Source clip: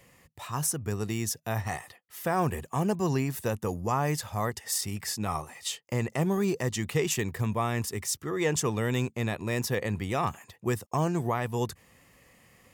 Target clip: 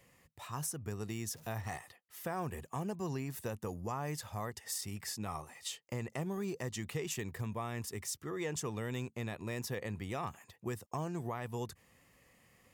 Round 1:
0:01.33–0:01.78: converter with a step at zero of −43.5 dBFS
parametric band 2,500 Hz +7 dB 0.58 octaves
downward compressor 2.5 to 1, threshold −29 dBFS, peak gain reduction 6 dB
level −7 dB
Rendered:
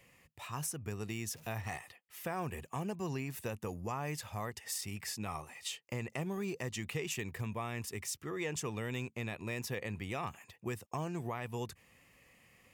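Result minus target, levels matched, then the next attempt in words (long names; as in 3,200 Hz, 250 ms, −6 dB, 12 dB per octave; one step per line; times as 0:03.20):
2,000 Hz band +3.0 dB
0:01.33–0:01.78: converter with a step at zero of −43.5 dBFS
downward compressor 2.5 to 1, threshold −29 dBFS, peak gain reduction 5.5 dB
level −7 dB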